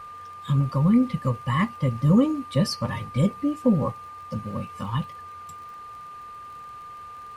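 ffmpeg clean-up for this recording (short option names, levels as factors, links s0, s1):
-af "adeclick=t=4,bandreject=f=1200:w=30"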